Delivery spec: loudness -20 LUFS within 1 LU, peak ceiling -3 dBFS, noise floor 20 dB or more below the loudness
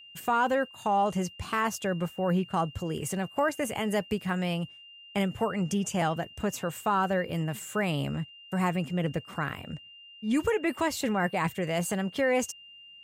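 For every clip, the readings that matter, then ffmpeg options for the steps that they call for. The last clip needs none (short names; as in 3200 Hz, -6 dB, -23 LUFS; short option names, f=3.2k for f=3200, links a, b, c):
steady tone 2800 Hz; tone level -48 dBFS; loudness -29.5 LUFS; peak -16.0 dBFS; loudness target -20.0 LUFS
-> -af "bandreject=f=2.8k:w=30"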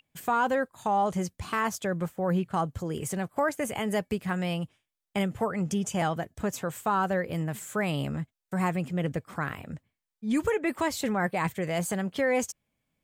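steady tone none; loudness -29.5 LUFS; peak -16.0 dBFS; loudness target -20.0 LUFS
-> -af "volume=9.5dB"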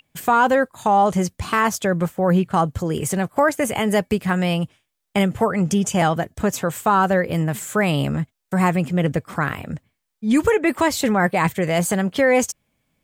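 loudness -20.0 LUFS; peak -6.5 dBFS; noise floor -77 dBFS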